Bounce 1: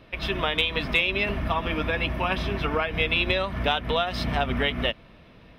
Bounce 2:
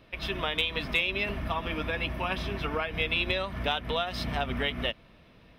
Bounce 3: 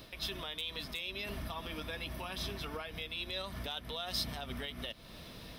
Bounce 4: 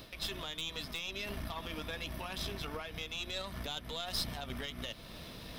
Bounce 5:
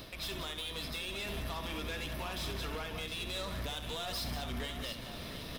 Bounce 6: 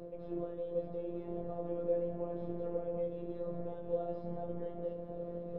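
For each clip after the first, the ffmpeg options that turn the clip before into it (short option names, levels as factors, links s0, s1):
-af "highshelf=f=4900:g=5.5,volume=0.531"
-af "areverse,acompressor=threshold=0.0112:ratio=4,areverse,alimiter=level_in=4.73:limit=0.0631:level=0:latency=1:release=277,volume=0.211,aexciter=amount=4.3:drive=4.6:freq=3600,volume=2"
-af "areverse,acompressor=mode=upward:threshold=0.00794:ratio=2.5,areverse,aeval=exprs='(tanh(31.6*val(0)+0.65)-tanh(0.65))/31.6':c=same,volume=1.5"
-filter_complex "[0:a]asoftclip=type=hard:threshold=0.0106,asplit=2[s0][s1];[s1]aecho=0:1:67|184|710:0.355|0.282|0.335[s2];[s0][s2]amix=inputs=2:normalize=0,volume=1.41"
-af "lowpass=f=490:t=q:w=4.9,flanger=delay=17.5:depth=4.6:speed=1.1,afftfilt=real='hypot(re,im)*cos(PI*b)':imag='0':win_size=1024:overlap=0.75,volume=1.78"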